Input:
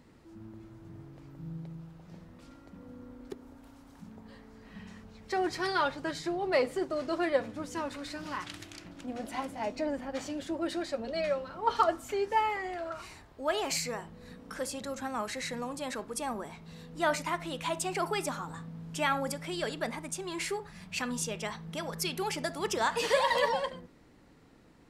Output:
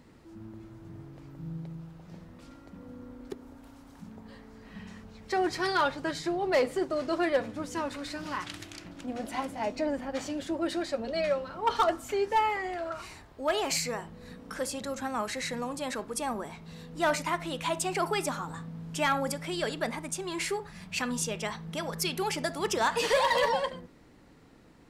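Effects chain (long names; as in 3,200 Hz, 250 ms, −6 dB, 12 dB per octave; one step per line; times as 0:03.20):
gain into a clipping stage and back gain 21.5 dB
level +2.5 dB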